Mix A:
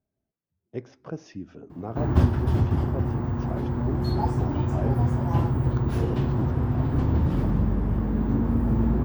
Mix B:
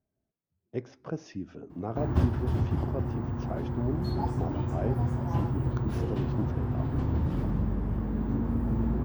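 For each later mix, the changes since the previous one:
background -5.5 dB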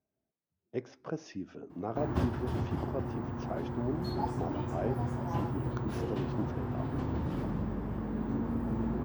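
master: add bass shelf 130 Hz -12 dB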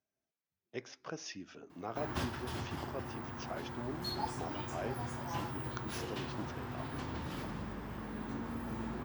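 master: add tilt shelf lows -9 dB, about 1.2 kHz

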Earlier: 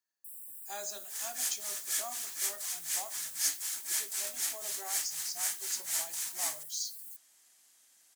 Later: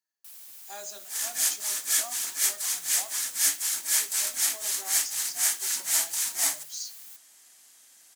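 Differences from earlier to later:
first sound: remove brick-wall FIR band-stop 450–7500 Hz; second sound +8.5 dB

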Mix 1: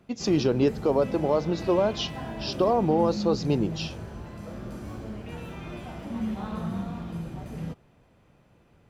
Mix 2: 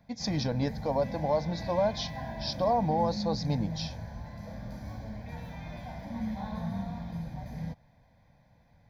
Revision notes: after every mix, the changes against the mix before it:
master: add static phaser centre 1.9 kHz, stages 8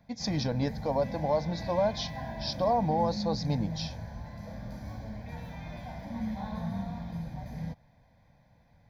no change

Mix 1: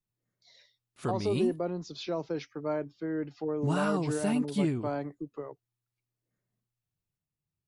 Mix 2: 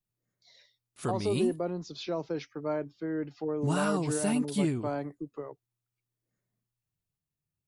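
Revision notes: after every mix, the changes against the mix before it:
background: add treble shelf 6.8 kHz +11 dB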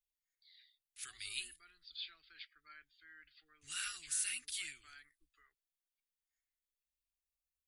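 speech: add rippled Chebyshev low-pass 4.8 kHz, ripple 6 dB; master: add inverse Chebyshev band-stop 110–1000 Hz, stop band 40 dB

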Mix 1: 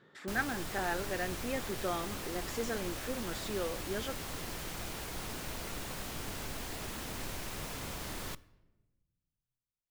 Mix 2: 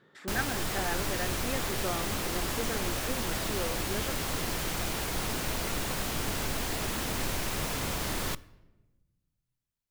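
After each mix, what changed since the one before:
background +8.5 dB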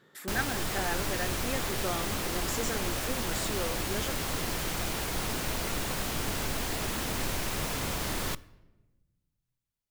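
speech: remove distance through air 130 m

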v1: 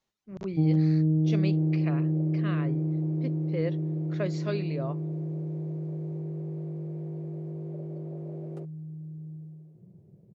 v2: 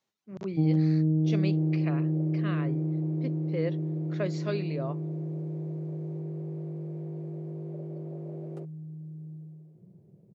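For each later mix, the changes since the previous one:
master: add high-pass 120 Hz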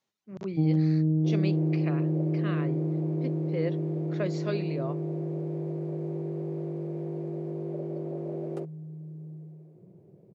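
second sound +7.5 dB

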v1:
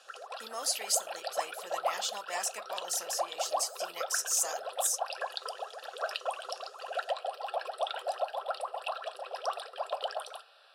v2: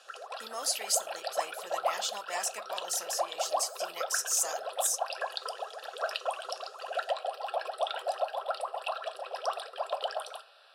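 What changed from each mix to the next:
reverb: on, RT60 0.50 s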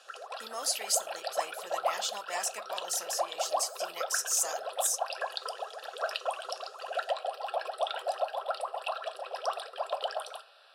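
no change

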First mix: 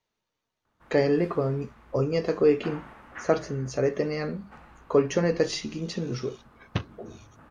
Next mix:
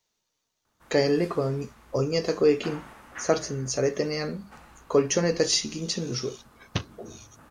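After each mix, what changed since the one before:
master: add tone controls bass -1 dB, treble +14 dB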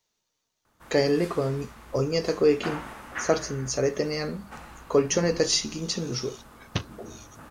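background +6.5 dB

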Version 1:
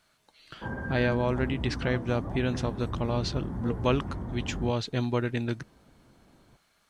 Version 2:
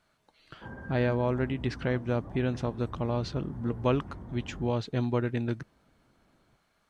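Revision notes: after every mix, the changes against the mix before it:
speech: add treble shelf 2.2 kHz -9 dB; background -8.0 dB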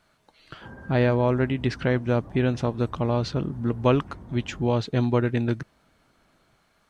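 speech +6.0 dB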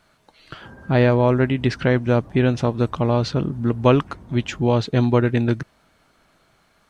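speech +5.0 dB

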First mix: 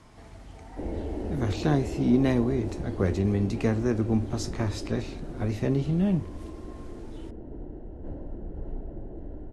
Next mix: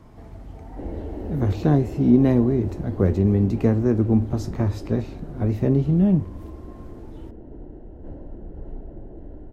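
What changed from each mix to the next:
speech: add tilt shelf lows +7 dB, about 1.2 kHz; master: remove steep low-pass 11 kHz 48 dB/octave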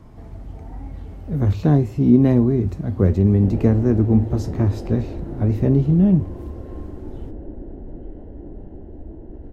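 background: entry +2.65 s; master: add bass shelf 230 Hz +5 dB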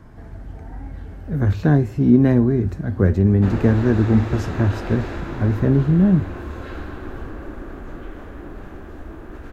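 background: remove boxcar filter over 37 samples; master: add peaking EQ 1.6 kHz +11.5 dB 0.42 oct

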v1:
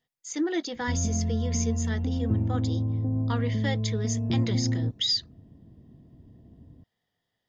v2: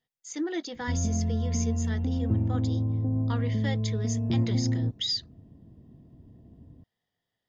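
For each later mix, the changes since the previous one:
speech -3.5 dB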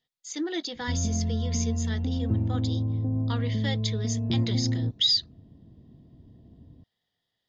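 background: add distance through air 220 m; master: add peaking EQ 3.9 kHz +9 dB 0.88 oct

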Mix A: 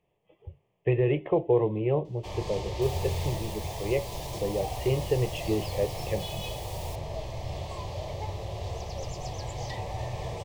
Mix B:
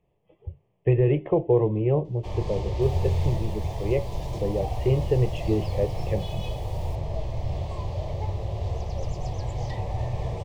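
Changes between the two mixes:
second sound -4.0 dB; master: add tilt EQ -2 dB/octave

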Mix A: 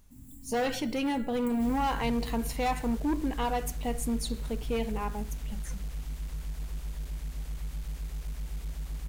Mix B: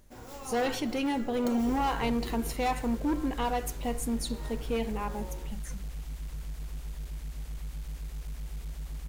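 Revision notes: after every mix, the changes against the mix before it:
first sound: remove Chebyshev band-stop 280–7700 Hz, order 5; reverb: off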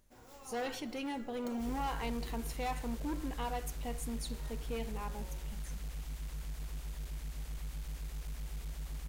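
speech -7.5 dB; first sound -9.5 dB; master: add bass shelf 410 Hz -3.5 dB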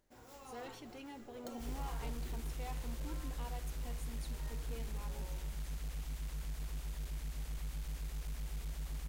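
speech -11.0 dB

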